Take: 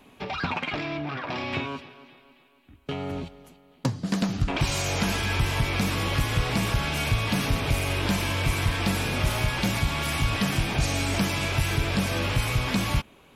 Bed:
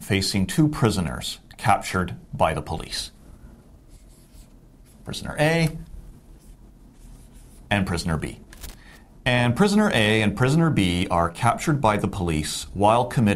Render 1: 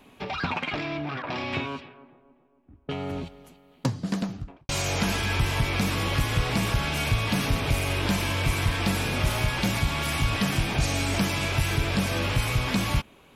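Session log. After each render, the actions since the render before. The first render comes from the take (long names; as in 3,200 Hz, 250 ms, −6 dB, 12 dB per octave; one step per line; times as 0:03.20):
0:01.22–0:02.91: low-pass that shuts in the quiet parts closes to 690 Hz, open at −27 dBFS
0:03.94–0:04.69: fade out and dull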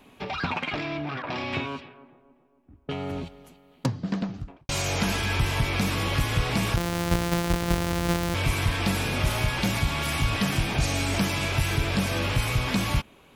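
0:03.86–0:04.34: high-frequency loss of the air 140 metres
0:06.76–0:08.35: samples sorted by size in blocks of 256 samples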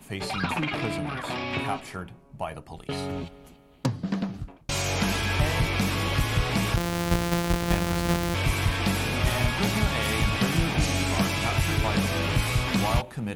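mix in bed −12.5 dB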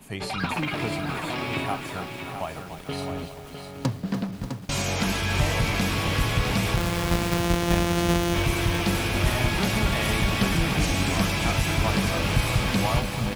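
single-tap delay 656 ms −8 dB
feedback echo at a low word length 293 ms, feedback 80%, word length 7 bits, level −10 dB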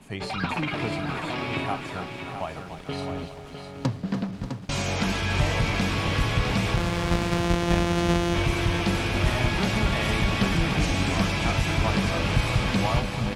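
high-frequency loss of the air 53 metres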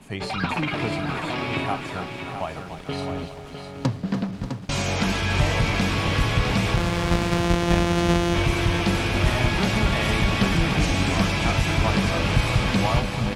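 level +2.5 dB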